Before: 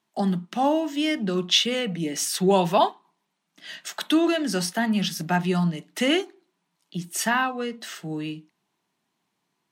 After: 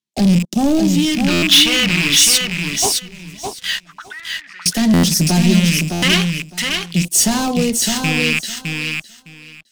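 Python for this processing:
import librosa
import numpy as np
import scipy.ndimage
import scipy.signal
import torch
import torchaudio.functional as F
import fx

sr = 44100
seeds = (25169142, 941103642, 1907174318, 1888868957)

y = fx.rattle_buzz(x, sr, strikes_db=-38.0, level_db=-21.0)
y = fx.peak_eq(y, sr, hz=1300.0, db=-11.0, octaves=1.8, at=(0.44, 1.2))
y = fx.leveller(y, sr, passes=5)
y = fx.auto_wah(y, sr, base_hz=560.0, top_hz=1900.0, q=13.0, full_db=-10.0, direction='up', at=(3.8, 4.66))
y = fx.phaser_stages(y, sr, stages=2, low_hz=350.0, high_hz=1600.0, hz=0.44, feedback_pct=45)
y = fx.tone_stack(y, sr, knobs='6-0-2', at=(2.37, 2.82), fade=0.02)
y = fx.echo_feedback(y, sr, ms=610, feedback_pct=15, wet_db=-5.0)
y = fx.buffer_glitch(y, sr, at_s=(1.32, 4.93, 5.92), block=512, repeats=8)
y = y * librosa.db_to_amplitude(-1.0)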